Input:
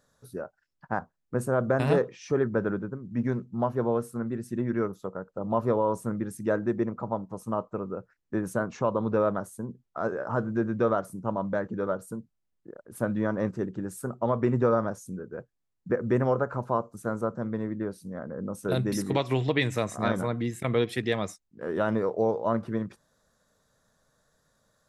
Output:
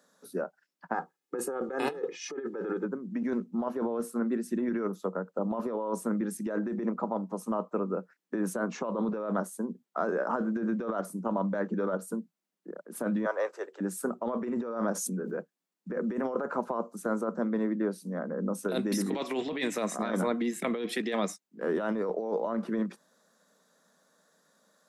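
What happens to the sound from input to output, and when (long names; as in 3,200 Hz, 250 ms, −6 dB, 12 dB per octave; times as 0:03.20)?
0:00.94–0:02.85: comb filter 2.4 ms, depth 80%
0:13.25–0:13.80: Butterworth high-pass 470 Hz
0:14.50–0:15.39: background raised ahead of every attack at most 32 dB per second
whole clip: Butterworth high-pass 170 Hz 72 dB per octave; compressor whose output falls as the input rises −30 dBFS, ratio −1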